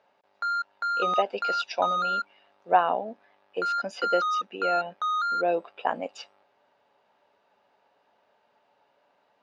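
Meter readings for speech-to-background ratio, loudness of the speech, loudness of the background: −1.5 dB, −30.0 LKFS, −28.5 LKFS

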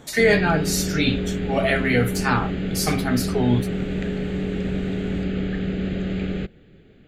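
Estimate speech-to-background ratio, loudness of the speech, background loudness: 4.0 dB, −22.5 LKFS, −26.5 LKFS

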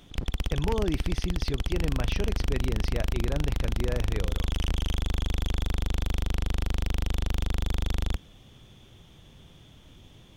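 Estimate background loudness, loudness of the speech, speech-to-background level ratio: −31.5 LKFS, −34.0 LKFS, −2.5 dB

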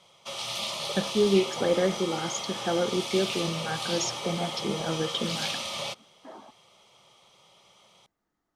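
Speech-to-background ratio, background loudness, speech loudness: 3.5 dB, −32.5 LKFS, −29.0 LKFS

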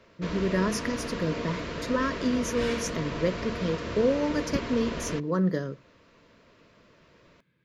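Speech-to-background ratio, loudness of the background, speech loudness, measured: 5.0 dB, −34.5 LKFS, −29.5 LKFS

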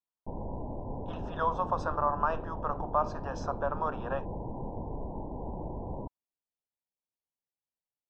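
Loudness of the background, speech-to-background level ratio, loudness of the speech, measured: −40.0 LKFS, 7.0 dB, −33.0 LKFS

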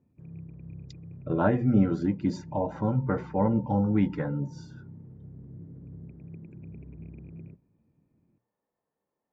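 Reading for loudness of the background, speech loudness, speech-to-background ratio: −46.0 LKFS, −27.0 LKFS, 19.0 dB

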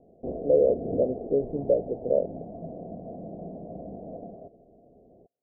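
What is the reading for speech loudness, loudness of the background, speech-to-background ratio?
−26.0 LKFS, −38.0 LKFS, 12.0 dB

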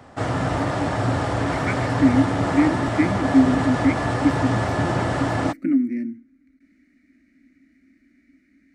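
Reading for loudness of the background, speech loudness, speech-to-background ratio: −23.5 LKFS, −23.0 LKFS, 0.5 dB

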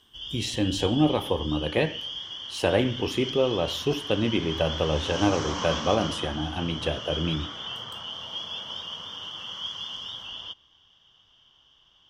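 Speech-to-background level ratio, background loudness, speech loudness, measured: 6.5 dB, −33.5 LKFS, −27.0 LKFS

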